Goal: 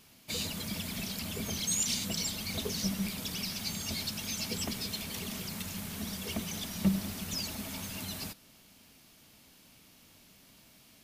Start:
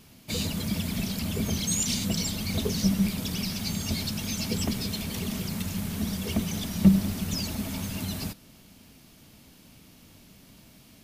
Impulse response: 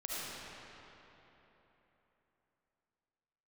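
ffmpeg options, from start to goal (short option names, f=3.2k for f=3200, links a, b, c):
-af "lowshelf=f=420:g=-9,volume=-2.5dB"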